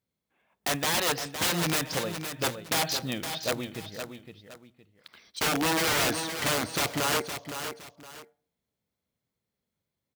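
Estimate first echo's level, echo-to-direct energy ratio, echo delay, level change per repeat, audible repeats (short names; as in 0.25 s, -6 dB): -8.5 dB, -8.0 dB, 0.514 s, -11.0 dB, 2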